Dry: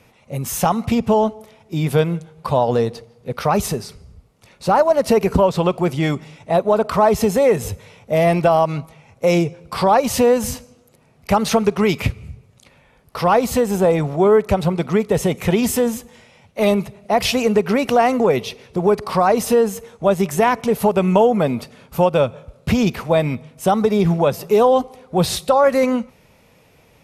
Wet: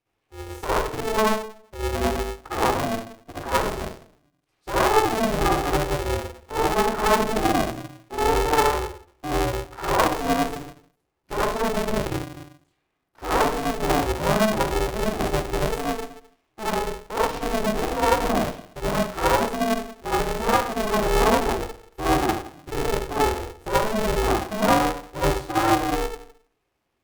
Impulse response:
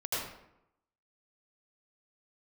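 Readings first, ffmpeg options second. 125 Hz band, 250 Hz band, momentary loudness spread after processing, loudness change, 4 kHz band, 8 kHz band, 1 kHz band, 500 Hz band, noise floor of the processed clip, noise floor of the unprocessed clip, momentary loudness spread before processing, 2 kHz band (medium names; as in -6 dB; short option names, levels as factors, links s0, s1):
-8.0 dB, -7.5 dB, 12 LU, -6.0 dB, -1.5 dB, -4.0 dB, -3.0 dB, -8.0 dB, -74 dBFS, -54 dBFS, 11 LU, 0.0 dB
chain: -filter_complex "[0:a]afwtdn=0.112[s0];[1:a]atrim=start_sample=2205,asetrate=66150,aresample=44100[s1];[s0][s1]afir=irnorm=-1:irlink=0,aeval=exprs='val(0)*sgn(sin(2*PI*220*n/s))':c=same,volume=0.376"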